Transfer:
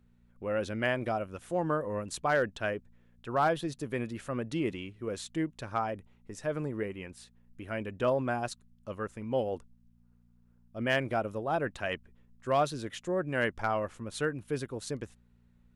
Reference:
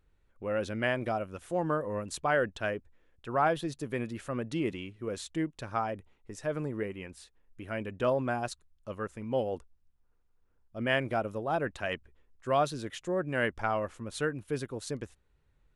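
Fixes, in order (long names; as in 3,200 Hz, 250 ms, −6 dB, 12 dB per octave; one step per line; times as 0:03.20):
clipped peaks rebuilt −18.5 dBFS
hum removal 59.2 Hz, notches 4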